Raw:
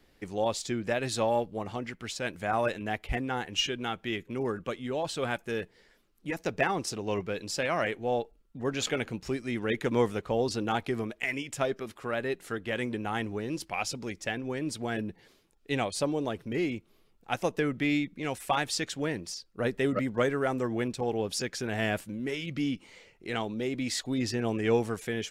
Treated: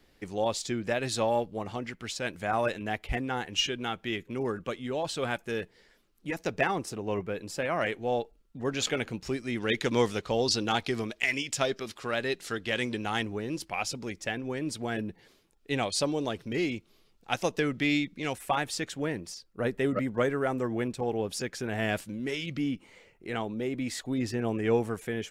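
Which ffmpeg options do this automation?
-af "asetnsamples=n=441:p=0,asendcmd='6.78 equalizer g -8;7.81 equalizer g 2.5;9.6 equalizer g 11.5;13.23 equalizer g 0.5;15.83 equalizer g 7;18.33 equalizer g -4;21.89 equalizer g 4;22.57 equalizer g -6.5',equalizer=f=4800:t=o:w=1.6:g=1.5"

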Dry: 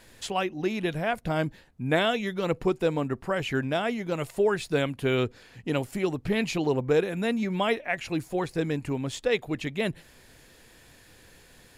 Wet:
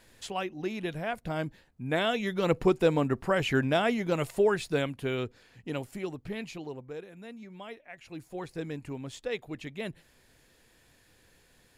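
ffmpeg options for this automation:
-af "volume=3.55,afade=t=in:st=1.91:d=0.62:silence=0.446684,afade=t=out:st=4.08:d=1.09:silence=0.375837,afade=t=out:st=5.85:d=1.06:silence=0.281838,afade=t=in:st=7.93:d=0.57:silence=0.334965"

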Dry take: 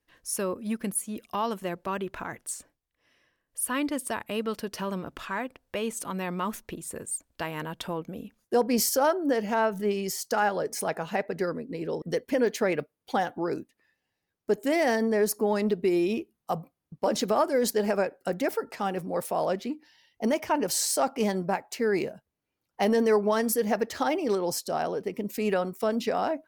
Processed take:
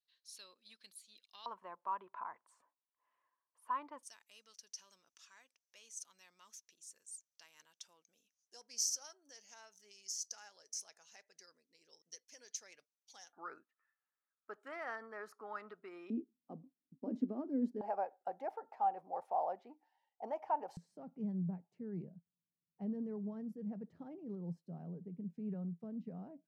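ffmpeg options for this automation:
-af "asetnsamples=n=441:p=0,asendcmd='1.46 bandpass f 1000;4.03 bandpass f 6000;13.33 bandpass f 1300;16.1 bandpass f 260;17.81 bandpass f 800;20.77 bandpass f 170',bandpass=f=4100:t=q:w=7.8:csg=0"

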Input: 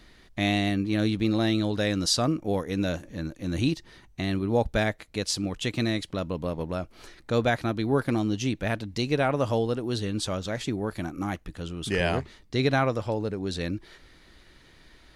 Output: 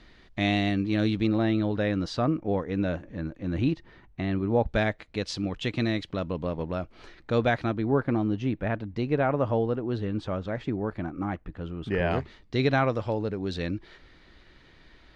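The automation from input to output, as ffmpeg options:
-af "asetnsamples=n=441:p=0,asendcmd='1.27 lowpass f 2200;4.68 lowpass f 3700;7.74 lowpass f 1800;12.11 lowpass f 4100',lowpass=4500"

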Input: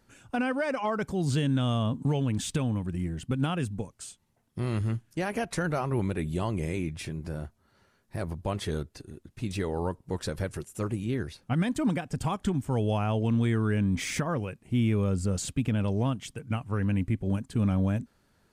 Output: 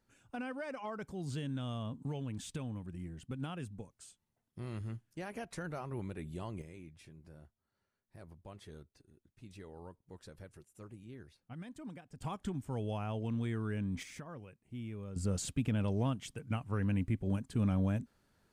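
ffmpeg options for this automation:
-af "asetnsamples=n=441:p=0,asendcmd='6.62 volume volume -20dB;12.22 volume volume -10.5dB;14.03 volume volume -18dB;15.16 volume volume -5.5dB',volume=0.237"

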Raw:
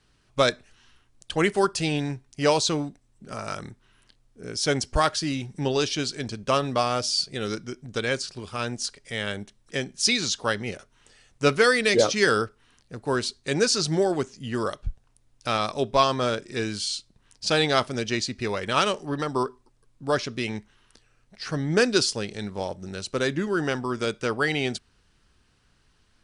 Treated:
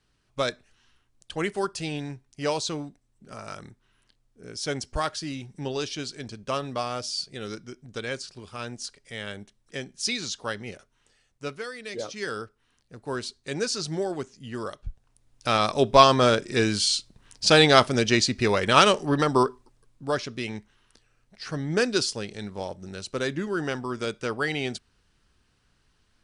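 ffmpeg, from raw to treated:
-af "volume=7.94,afade=t=out:st=10.74:d=0.97:silence=0.237137,afade=t=in:st=11.71:d=1.44:silence=0.237137,afade=t=in:st=14.85:d=1.16:silence=0.266073,afade=t=out:st=19.29:d=0.87:silence=0.375837"

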